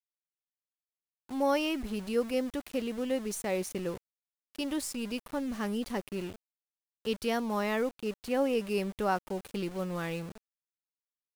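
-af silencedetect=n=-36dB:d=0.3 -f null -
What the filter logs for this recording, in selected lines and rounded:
silence_start: 0.00
silence_end: 1.31 | silence_duration: 1.31
silence_start: 3.97
silence_end: 4.55 | silence_duration: 0.58
silence_start: 6.32
silence_end: 7.06 | silence_duration: 0.73
silence_start: 10.32
silence_end: 11.35 | silence_duration: 1.03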